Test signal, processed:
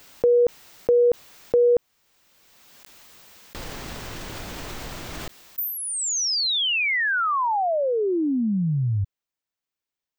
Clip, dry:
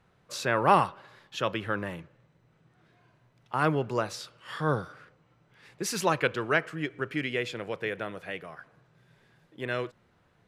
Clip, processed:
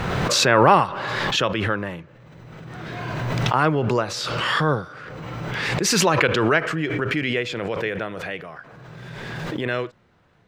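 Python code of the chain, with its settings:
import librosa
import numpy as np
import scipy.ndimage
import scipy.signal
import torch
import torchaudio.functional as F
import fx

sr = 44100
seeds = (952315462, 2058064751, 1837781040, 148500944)

y = fx.peak_eq(x, sr, hz=11000.0, db=-10.5, octaves=0.64)
y = fx.pre_swell(y, sr, db_per_s=21.0)
y = F.gain(torch.from_numpy(y), 5.5).numpy()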